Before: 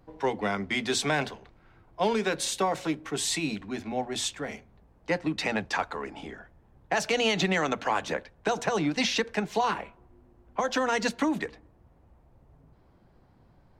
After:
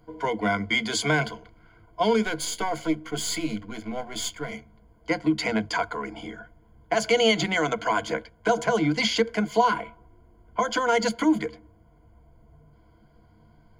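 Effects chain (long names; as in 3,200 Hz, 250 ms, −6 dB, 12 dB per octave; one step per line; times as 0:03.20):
0:02.24–0:04.52: gain on one half-wave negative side −7 dB
EQ curve with evenly spaced ripples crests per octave 1.8, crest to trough 16 dB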